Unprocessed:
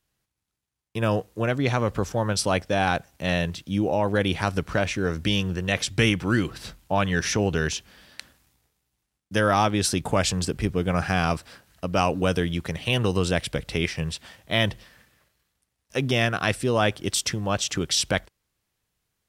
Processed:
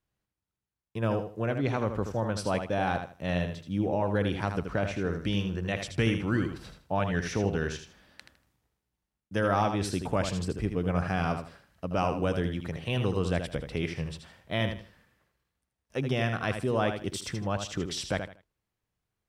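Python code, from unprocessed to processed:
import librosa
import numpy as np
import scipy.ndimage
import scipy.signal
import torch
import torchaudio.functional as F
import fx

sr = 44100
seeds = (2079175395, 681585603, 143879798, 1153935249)

y = fx.high_shelf(x, sr, hz=2500.0, db=-10.0)
y = fx.echo_feedback(y, sr, ms=79, feedback_pct=25, wet_db=-7.5)
y = y * 10.0 ** (-5.0 / 20.0)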